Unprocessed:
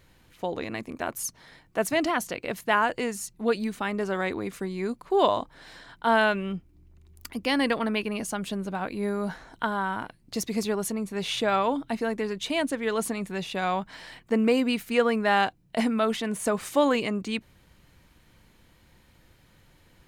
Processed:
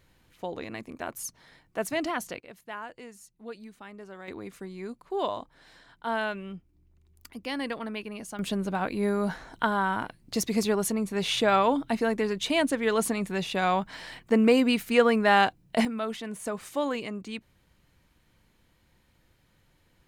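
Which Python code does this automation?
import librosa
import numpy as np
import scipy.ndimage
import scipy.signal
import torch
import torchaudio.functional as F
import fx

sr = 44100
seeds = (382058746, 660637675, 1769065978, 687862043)

y = fx.gain(x, sr, db=fx.steps((0.0, -4.5), (2.4, -16.0), (4.28, -8.0), (8.39, 2.0), (15.85, -7.0)))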